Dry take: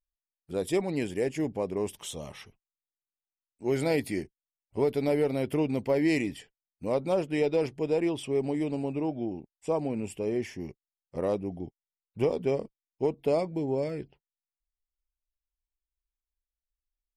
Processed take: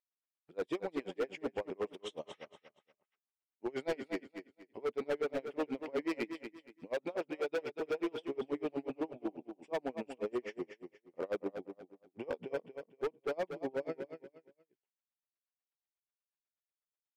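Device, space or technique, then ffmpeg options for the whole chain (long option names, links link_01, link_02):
helicopter radio: -filter_complex "[0:a]highpass=340,lowpass=2900,aeval=exprs='val(0)*pow(10,-34*(0.5-0.5*cos(2*PI*8.2*n/s))/20)':channel_layout=same,asoftclip=type=hard:threshold=-33dB,asettb=1/sr,asplit=3[link_01][link_02][link_03];[link_01]atrim=end=6.944[link_04];[link_02]atrim=start=6.94:end=7.62,asetpts=PTS-STARTPTS,afade=type=in:duration=0.004:curve=qsin,afade=type=out:start_time=0.676:duration=0.004:curve=qsin,highpass=frequency=240:poles=1[link_05];[link_03]atrim=start=7.616[link_06];[link_04][link_05]acrossfade=duration=0.004:curve1=hsin:curve2=qsin[link_07];[link_07][link_06]acrossfade=duration=0.004:curve1=qsin:curve2=hsin,aecho=1:1:236|472|708:0.376|0.105|0.0295,volume=3dB"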